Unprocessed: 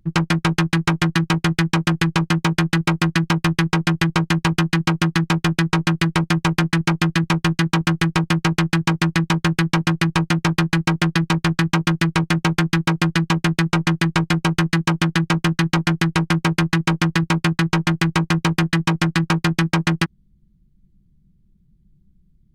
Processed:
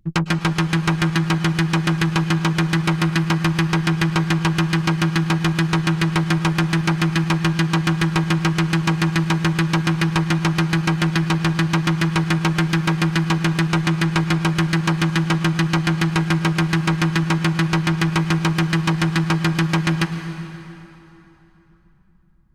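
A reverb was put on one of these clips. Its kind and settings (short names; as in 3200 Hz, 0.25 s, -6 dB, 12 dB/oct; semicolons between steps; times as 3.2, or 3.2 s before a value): plate-style reverb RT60 3.4 s, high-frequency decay 0.75×, pre-delay 95 ms, DRR 9 dB; gain -1.5 dB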